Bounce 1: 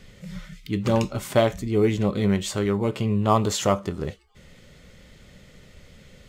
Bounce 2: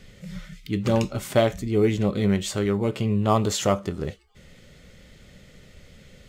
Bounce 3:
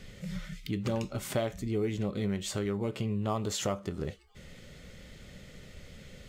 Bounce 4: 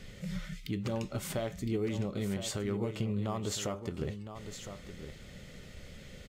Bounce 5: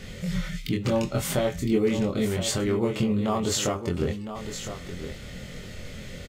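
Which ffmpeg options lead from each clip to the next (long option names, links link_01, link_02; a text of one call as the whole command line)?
ffmpeg -i in.wav -af "equalizer=frequency=1000:width_type=o:width=0.45:gain=-4" out.wav
ffmpeg -i in.wav -af "acompressor=threshold=-33dB:ratio=2.5" out.wav
ffmpeg -i in.wav -af "alimiter=level_in=1dB:limit=-24dB:level=0:latency=1:release=210,volume=-1dB,aecho=1:1:1011:0.316" out.wav
ffmpeg -i in.wav -filter_complex "[0:a]asplit=2[link_01][link_02];[link_02]adelay=23,volume=-2.5dB[link_03];[link_01][link_03]amix=inputs=2:normalize=0,volume=8dB" out.wav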